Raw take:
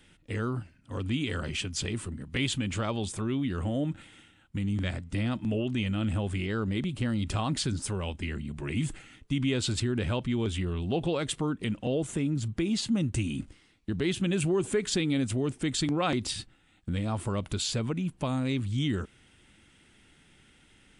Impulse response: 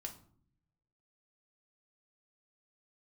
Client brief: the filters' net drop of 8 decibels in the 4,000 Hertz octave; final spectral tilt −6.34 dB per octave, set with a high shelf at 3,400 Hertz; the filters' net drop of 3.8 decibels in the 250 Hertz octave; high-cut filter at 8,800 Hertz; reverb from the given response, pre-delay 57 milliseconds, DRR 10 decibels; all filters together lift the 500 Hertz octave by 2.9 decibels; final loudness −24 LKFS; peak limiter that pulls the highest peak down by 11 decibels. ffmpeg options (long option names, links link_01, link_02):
-filter_complex "[0:a]lowpass=8800,equalizer=frequency=250:width_type=o:gain=-7,equalizer=frequency=500:width_type=o:gain=6.5,highshelf=frequency=3400:gain=-8.5,equalizer=frequency=4000:width_type=o:gain=-4.5,alimiter=level_in=2.5dB:limit=-24dB:level=0:latency=1,volume=-2.5dB,asplit=2[link_01][link_02];[1:a]atrim=start_sample=2205,adelay=57[link_03];[link_02][link_03]afir=irnorm=-1:irlink=0,volume=-7dB[link_04];[link_01][link_04]amix=inputs=2:normalize=0,volume=11.5dB"